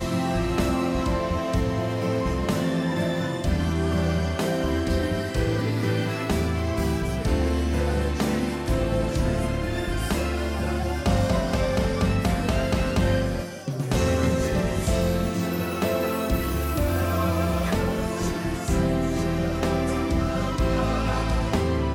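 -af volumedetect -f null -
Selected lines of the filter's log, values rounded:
mean_volume: -23.8 dB
max_volume: -12.8 dB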